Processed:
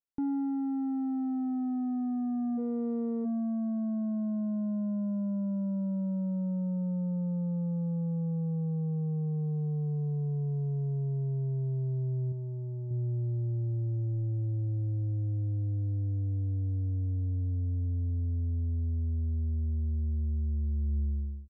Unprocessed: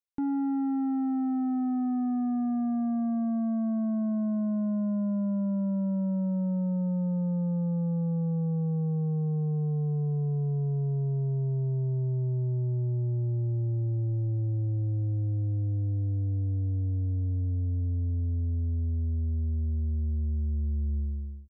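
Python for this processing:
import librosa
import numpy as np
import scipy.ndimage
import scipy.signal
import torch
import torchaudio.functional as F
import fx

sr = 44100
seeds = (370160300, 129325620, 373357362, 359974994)

y = fx.lower_of_two(x, sr, delay_ms=0.92, at=(2.57, 3.24), fade=0.02)
y = fx.tilt_shelf(y, sr, db=4.5, hz=1100.0)
y = fx.rider(y, sr, range_db=10, speed_s=0.5)
y = fx.low_shelf(y, sr, hz=340.0, db=-6.0, at=(12.32, 12.91))
y = y * 10.0 ** (-7.0 / 20.0)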